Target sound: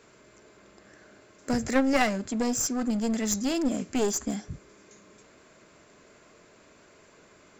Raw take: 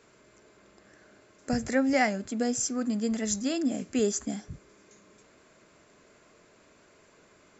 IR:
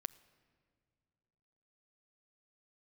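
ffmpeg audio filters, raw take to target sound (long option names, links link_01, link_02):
-af "aeval=exprs='0.224*(cos(1*acos(clip(val(0)/0.224,-1,1)))-cos(1*PI/2))+0.0141*(cos(3*acos(clip(val(0)/0.224,-1,1)))-cos(3*PI/2))+0.01*(cos(6*acos(clip(val(0)/0.224,-1,1)))-cos(6*PI/2))+0.00501*(cos(8*acos(clip(val(0)/0.224,-1,1)))-cos(8*PI/2))':channel_layout=same,aeval=exprs='clip(val(0),-1,0.0266)':channel_layout=same,volume=5dB"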